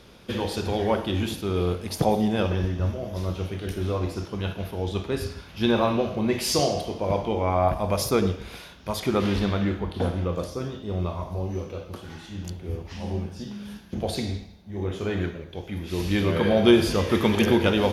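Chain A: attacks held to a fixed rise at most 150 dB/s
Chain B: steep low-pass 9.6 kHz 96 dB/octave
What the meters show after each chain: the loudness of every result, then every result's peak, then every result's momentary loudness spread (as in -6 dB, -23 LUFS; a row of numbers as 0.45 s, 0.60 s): -26.5 LUFS, -26.0 LUFS; -5.0 dBFS, -5.0 dBFS; 15 LU, 14 LU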